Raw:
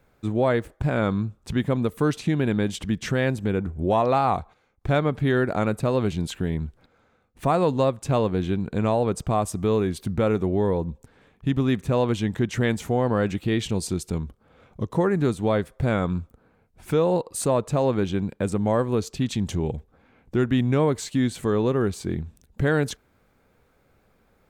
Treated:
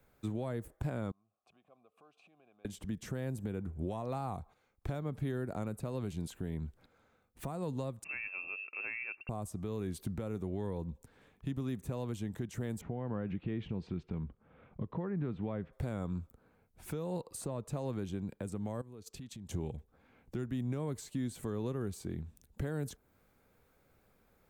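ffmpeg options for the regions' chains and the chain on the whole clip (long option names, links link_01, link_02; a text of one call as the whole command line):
ffmpeg -i in.wav -filter_complex "[0:a]asettb=1/sr,asplit=3[link_01][link_02][link_03];[link_01]atrim=end=1.114[link_04];[link_02]atrim=start=1.11:end=2.65,asetpts=PTS-STARTPTS,afade=type=in:duration=0.004:curve=qsin,afade=type=out:start_time=1.536:duration=0.004:curve=qsin,acompressor=threshold=-38dB:ratio=4:attack=3.2:release=140:knee=1:detection=peak,asplit=3[link_05][link_06][link_07];[link_05]bandpass=frequency=730:width_type=q:width=8,volume=0dB[link_08];[link_06]bandpass=frequency=1090:width_type=q:width=8,volume=-6dB[link_09];[link_07]bandpass=frequency=2440:width_type=q:width=8,volume=-9dB[link_10];[link_08][link_09][link_10]amix=inputs=3:normalize=0[link_11];[link_03]atrim=start=2.646[link_12];[link_04][link_11]acrossfade=duration=0.004:curve1=hsin:curve2=qsin[link_13];[link_13][link_12]acrossfade=duration=0.004:curve1=qsin:curve2=hsin,asettb=1/sr,asplit=3[link_14][link_15][link_16];[link_14]atrim=end=8.044[link_17];[link_15]atrim=start=8.04:end=9.29,asetpts=PTS-STARTPTS,afade=type=in:duration=0.004:curve=qsin,afade=type=out:start_time=1.246:duration=0.004:curve=qsin,highpass=47,lowshelf=frequency=450:gain=10,lowpass=frequency=2400:width_type=q:width=0.5098,lowpass=frequency=2400:width_type=q:width=0.6013,lowpass=frequency=2400:width_type=q:width=0.9,lowpass=frequency=2400:width_type=q:width=2.563,afreqshift=-2800[link_18];[link_16]atrim=start=9.286[link_19];[link_17][link_18]acrossfade=duration=0.004:curve1=hsin:curve2=qsin[link_20];[link_20][link_19]acrossfade=duration=0.004:curve1=qsin:curve2=hsin,asettb=1/sr,asplit=3[link_21][link_22][link_23];[link_21]atrim=end=12.814[link_24];[link_22]atrim=start=12.81:end=15.73,asetpts=PTS-STARTPTS,afade=type=in:duration=0.004:curve=qsin,afade=type=out:start_time=2.916:duration=0.004:curve=qsin,equalizer=frequency=170:width=1.6:gain=5,acompressor=threshold=-24dB:ratio=2:attack=3.2:release=140:knee=1:detection=peak,lowpass=frequency=2800:width=0.5412,lowpass=frequency=2800:width=1.3066[link_25];[link_23]atrim=start=15.726[link_26];[link_24][link_25]acrossfade=duration=0.004:curve1=hsin:curve2=qsin[link_27];[link_27][link_26]acrossfade=duration=0.004:curve1=qsin:curve2=hsin,asettb=1/sr,asplit=3[link_28][link_29][link_30];[link_28]atrim=end=18.814[link_31];[link_29]atrim=start=18.81:end=19.51,asetpts=PTS-STARTPTS,afade=type=in:duration=0.004:curve=qsin,afade=type=out:start_time=0.696:duration=0.004:curve=qsin,acompressor=threshold=-36dB:ratio=10:attack=3.2:release=140:knee=1:detection=peak,agate=range=-10dB:threshold=-45dB:ratio=16:release=100:detection=peak[link_32];[link_30]atrim=start=19.506[link_33];[link_31][link_32]acrossfade=duration=0.004:curve1=hsin:curve2=qsin[link_34];[link_34][link_33]acrossfade=duration=0.004:curve1=qsin:curve2=hsin,highshelf=frequency=9700:gain=10.5,acrossover=split=230|1200|6500[link_35][link_36][link_37][link_38];[link_35]acompressor=threshold=-25dB:ratio=4[link_39];[link_36]acompressor=threshold=-29dB:ratio=4[link_40];[link_37]acompressor=threshold=-46dB:ratio=4[link_41];[link_38]acompressor=threshold=-42dB:ratio=4[link_42];[link_39][link_40][link_41][link_42]amix=inputs=4:normalize=0,alimiter=limit=-20dB:level=0:latency=1:release=448,volume=-7dB" out.wav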